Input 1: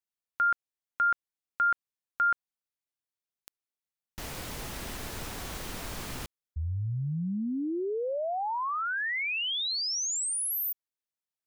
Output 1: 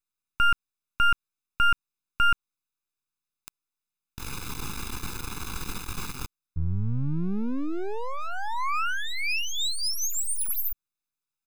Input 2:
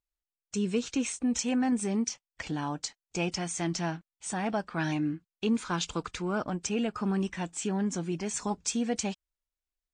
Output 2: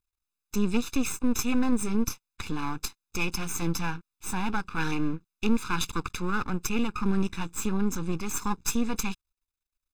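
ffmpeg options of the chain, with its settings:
ffmpeg -i in.wav -af "aeval=exprs='max(val(0),0)':channel_layout=same,aecho=1:1:0.8:0.93,volume=3.5dB" out.wav

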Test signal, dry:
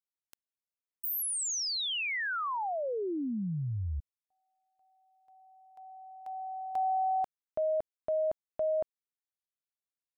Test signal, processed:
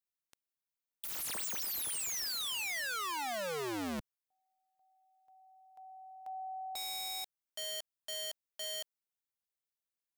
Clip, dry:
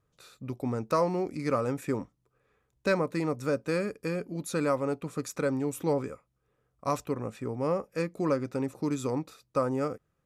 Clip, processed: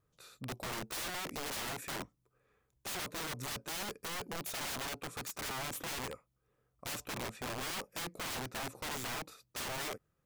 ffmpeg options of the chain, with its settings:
ffmpeg -i in.wav -af "highshelf=frequency=12000:gain=7,aeval=exprs='(mod(37.6*val(0)+1,2)-1)/37.6':channel_layout=same,volume=-3dB" out.wav

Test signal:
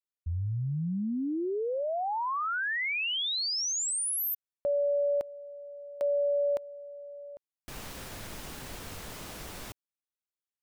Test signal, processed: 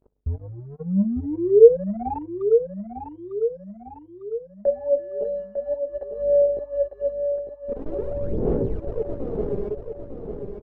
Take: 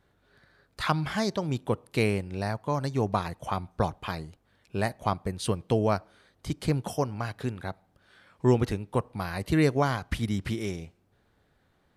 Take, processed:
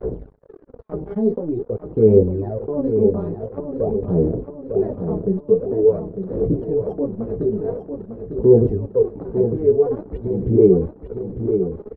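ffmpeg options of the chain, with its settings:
ffmpeg -i in.wav -af "aeval=exprs='val(0)+0.5*0.0126*sgn(val(0))':channel_layout=same,adynamicequalizer=threshold=0.01:dfrequency=230:dqfactor=0.97:tfrequency=230:tqfactor=0.97:attack=5:release=100:ratio=0.375:range=1.5:mode=boostabove:tftype=bell,aeval=exprs='val(0)+0.00158*(sin(2*PI*50*n/s)+sin(2*PI*2*50*n/s)/2+sin(2*PI*3*50*n/s)/3+sin(2*PI*4*50*n/s)/4+sin(2*PI*5*50*n/s)/5)':channel_layout=same,flanger=delay=16:depth=2.4:speed=0.19,areverse,acompressor=threshold=-37dB:ratio=12:attack=23:release=43:knee=6:detection=rms,areverse,aphaser=in_gain=1:out_gain=1:delay=5:decay=0.73:speed=0.47:type=sinusoidal,lowpass=frequency=440:width_type=q:width=4.9,acompressor=mode=upward:threshold=-34dB:ratio=2.5:attack=4.9:release=108:knee=2.83:detection=peak,agate=range=-46dB:threshold=-39dB:ratio=16:release=35:detection=peak,aecho=1:1:901|1802|2703|3604|4505|5406:0.422|0.211|0.105|0.0527|0.0264|0.0132,crystalizer=i=1.5:c=0,volume=8.5dB" out.wav

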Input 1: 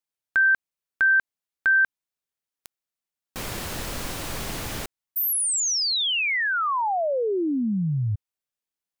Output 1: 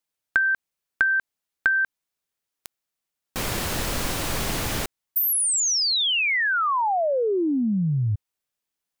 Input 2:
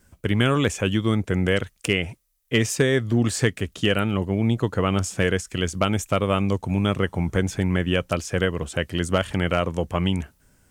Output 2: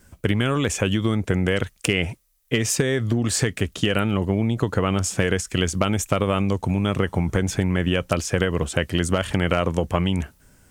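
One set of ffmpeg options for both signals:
ffmpeg -i in.wav -af "acompressor=threshold=-28dB:ratio=6:attack=40:release=68:knee=1:detection=peak,volume=5dB" out.wav

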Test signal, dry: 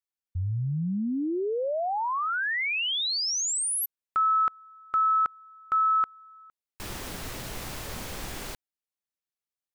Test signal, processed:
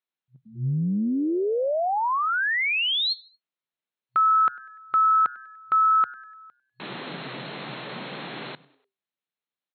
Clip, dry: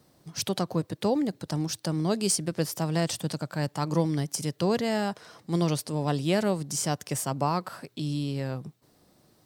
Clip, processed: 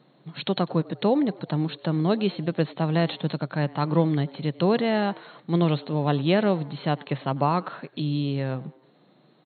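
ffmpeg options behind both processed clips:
ffmpeg -i in.wav -filter_complex "[0:a]asplit=4[link_01][link_02][link_03][link_04];[link_02]adelay=98,afreqshift=130,volume=-23dB[link_05];[link_03]adelay=196,afreqshift=260,volume=-29.7dB[link_06];[link_04]adelay=294,afreqshift=390,volume=-36.5dB[link_07];[link_01][link_05][link_06][link_07]amix=inputs=4:normalize=0,afftfilt=real='re*between(b*sr/4096,120,4300)':imag='im*between(b*sr/4096,120,4300)':win_size=4096:overlap=0.75,volume=4dB" out.wav

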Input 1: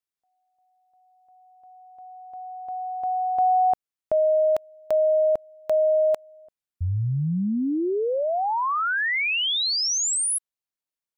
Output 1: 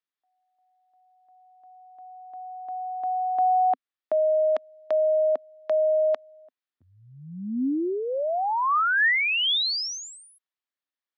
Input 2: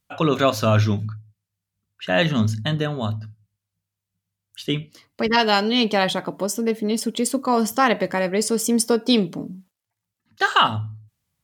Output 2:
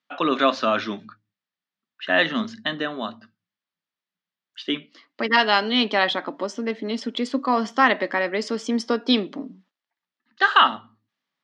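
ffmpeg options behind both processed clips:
ffmpeg -i in.wav -af "highpass=frequency=250:width=0.5412,highpass=frequency=250:width=1.3066,equalizer=frequency=260:width_type=q:width=4:gain=4,equalizer=frequency=450:width_type=q:width=4:gain=-4,equalizer=frequency=1200:width_type=q:width=4:gain=4,equalizer=frequency=1800:width_type=q:width=4:gain=6,equalizer=frequency=3400:width_type=q:width=4:gain=3,lowpass=frequency=4900:width=0.5412,lowpass=frequency=4900:width=1.3066,volume=-1.5dB" out.wav

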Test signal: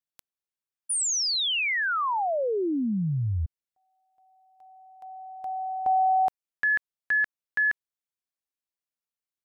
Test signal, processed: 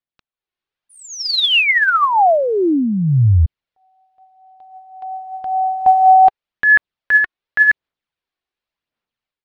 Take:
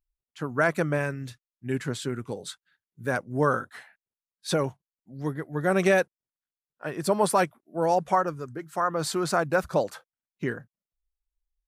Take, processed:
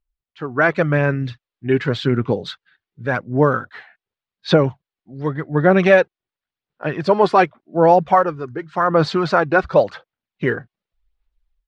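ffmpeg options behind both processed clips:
ffmpeg -i in.wav -af "lowpass=frequency=4100:width=0.5412,lowpass=frequency=4100:width=1.3066,aphaser=in_gain=1:out_gain=1:delay=2.8:decay=0.39:speed=0.89:type=sinusoidal,dynaudnorm=framelen=320:gausssize=3:maxgain=11.5dB" out.wav

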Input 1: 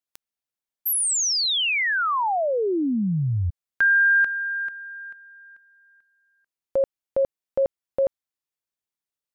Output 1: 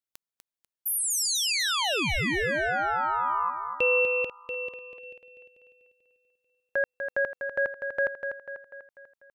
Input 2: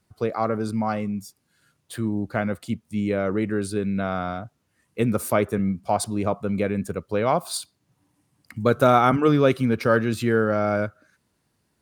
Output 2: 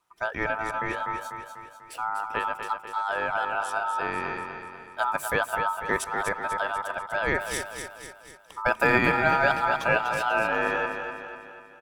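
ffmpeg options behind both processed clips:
ffmpeg -i in.wav -af "aecho=1:1:246|492|738|984|1230|1476:0.447|0.232|0.121|0.0628|0.0327|0.017,aeval=exprs='val(0)*sin(2*PI*1100*n/s)':channel_layout=same,volume=-2dB" out.wav

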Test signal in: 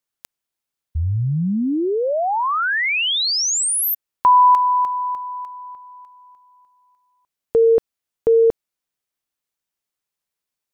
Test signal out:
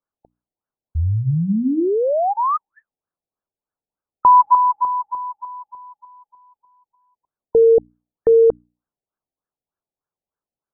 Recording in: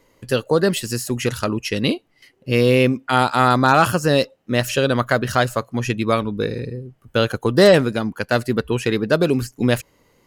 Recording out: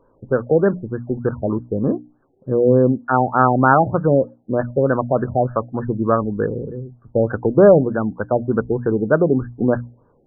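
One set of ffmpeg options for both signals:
ffmpeg -i in.wav -af "bandreject=frequency=60:width_type=h:width=6,bandreject=frequency=120:width_type=h:width=6,bandreject=frequency=180:width_type=h:width=6,bandreject=frequency=240:width_type=h:width=6,bandreject=frequency=300:width_type=h:width=6,afftfilt=real='re*lt(b*sr/1024,810*pow(1800/810,0.5+0.5*sin(2*PI*3.3*pts/sr)))':imag='im*lt(b*sr/1024,810*pow(1800/810,0.5+0.5*sin(2*PI*3.3*pts/sr)))':win_size=1024:overlap=0.75,volume=2dB" out.wav

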